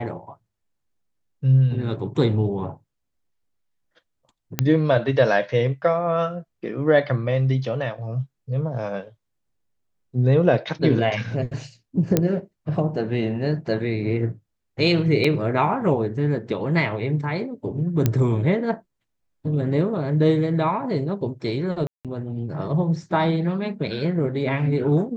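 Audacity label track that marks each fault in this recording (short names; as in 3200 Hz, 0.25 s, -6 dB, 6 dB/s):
4.590000	4.590000	pop -4 dBFS
12.170000	12.170000	pop -4 dBFS
15.240000	15.240000	gap 4 ms
18.060000	18.060000	pop -6 dBFS
21.870000	22.050000	gap 0.177 s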